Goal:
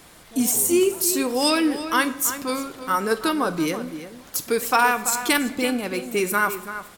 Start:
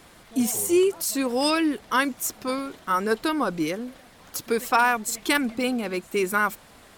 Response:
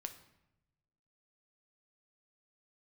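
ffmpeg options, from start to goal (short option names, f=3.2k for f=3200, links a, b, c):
-filter_complex "[0:a]asplit=2[a][b];[b]adelay=332.4,volume=-11dB,highshelf=f=4k:g=-7.48[c];[a][c]amix=inputs=2:normalize=0,asplit=2[d][e];[1:a]atrim=start_sample=2205,highshelf=f=5k:g=9[f];[e][f]afir=irnorm=-1:irlink=0,volume=7.5dB[g];[d][g]amix=inputs=2:normalize=0,volume=-7dB"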